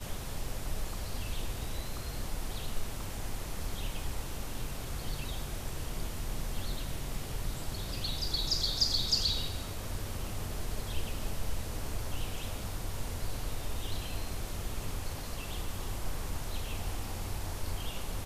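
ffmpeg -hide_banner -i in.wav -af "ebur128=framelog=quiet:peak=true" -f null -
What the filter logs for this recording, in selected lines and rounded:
Integrated loudness:
  I:         -36.9 LUFS
  Threshold: -46.9 LUFS
Loudness range:
  LRA:         8.0 LU
  Threshold: -56.6 LUFS
  LRA low:   -39.8 LUFS
  LRA high:  -31.8 LUFS
True peak:
  Peak:      -14.1 dBFS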